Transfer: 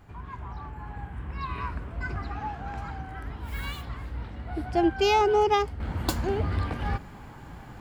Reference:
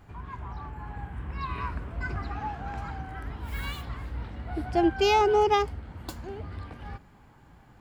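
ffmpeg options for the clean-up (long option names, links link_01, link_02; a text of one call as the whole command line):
ffmpeg -i in.wav -af "asetnsamples=nb_out_samples=441:pad=0,asendcmd='5.8 volume volume -11dB',volume=0dB" out.wav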